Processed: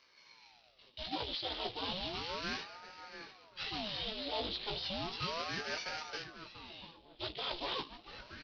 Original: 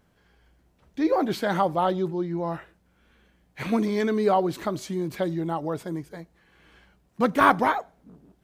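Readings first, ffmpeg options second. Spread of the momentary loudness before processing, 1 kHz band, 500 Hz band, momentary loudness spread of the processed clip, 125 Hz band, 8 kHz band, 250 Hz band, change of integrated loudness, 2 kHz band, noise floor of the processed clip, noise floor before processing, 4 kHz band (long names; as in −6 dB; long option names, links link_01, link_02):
15 LU, −17.5 dB, −18.0 dB, 13 LU, −17.0 dB, −9.0 dB, −21.0 dB, −14.0 dB, −10.5 dB, −64 dBFS, −65 dBFS, +5.0 dB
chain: -filter_complex "[0:a]aecho=1:1:1.5:0.57,acrusher=bits=2:mode=log:mix=0:aa=0.000001,highshelf=frequency=2400:width_type=q:width=3:gain=13,areverse,acompressor=threshold=-24dB:ratio=10,areverse,volume=26dB,asoftclip=hard,volume=-26dB,flanger=delay=15.5:depth=2.8:speed=0.66,bass=frequency=250:gain=-8,treble=frequency=4000:gain=-7,asplit=2[link_01][link_02];[link_02]adelay=690,lowpass=frequency=2600:poles=1,volume=-10dB,asplit=2[link_03][link_04];[link_04]adelay=690,lowpass=frequency=2600:poles=1,volume=0.35,asplit=2[link_05][link_06];[link_06]adelay=690,lowpass=frequency=2600:poles=1,volume=0.35,asplit=2[link_07][link_08];[link_08]adelay=690,lowpass=frequency=2600:poles=1,volume=0.35[link_09];[link_03][link_05][link_07][link_09]amix=inputs=4:normalize=0[link_10];[link_01][link_10]amix=inputs=2:normalize=0,aresample=11025,aresample=44100,aeval=exprs='val(0)*sin(2*PI*610*n/s+610*0.8/0.34*sin(2*PI*0.34*n/s))':channel_layout=same,volume=1dB"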